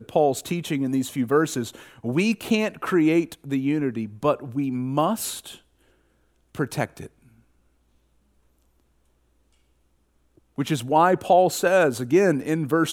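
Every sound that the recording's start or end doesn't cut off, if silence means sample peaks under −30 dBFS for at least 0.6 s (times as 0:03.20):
0:06.55–0:07.06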